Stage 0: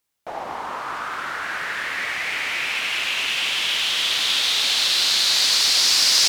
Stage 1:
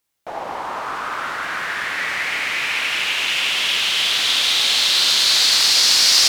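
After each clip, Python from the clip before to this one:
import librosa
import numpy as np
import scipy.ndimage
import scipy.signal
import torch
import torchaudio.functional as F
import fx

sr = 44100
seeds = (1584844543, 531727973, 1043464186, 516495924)

y = fx.rev_schroeder(x, sr, rt60_s=3.7, comb_ms=32, drr_db=3.5)
y = y * librosa.db_to_amplitude(1.5)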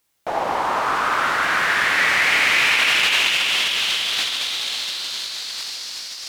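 y = fx.over_compress(x, sr, threshold_db=-22.0, ratio=-0.5)
y = y * librosa.db_to_amplitude(2.0)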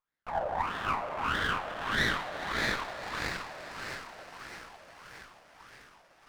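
y = fx.wah_lfo(x, sr, hz=1.6, low_hz=580.0, high_hz=1800.0, q=4.7)
y = fx.echo_diffused(y, sr, ms=471, feedback_pct=48, wet_db=-13)
y = fx.running_max(y, sr, window=9)
y = y * librosa.db_to_amplitude(-3.5)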